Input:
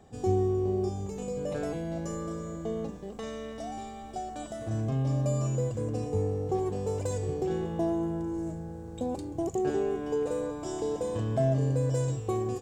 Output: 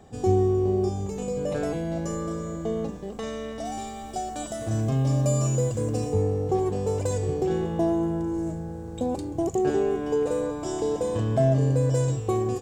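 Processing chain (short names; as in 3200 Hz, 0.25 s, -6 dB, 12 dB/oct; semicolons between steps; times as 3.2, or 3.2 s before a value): 3.65–6.13 high shelf 5100 Hz +9 dB; gain +5 dB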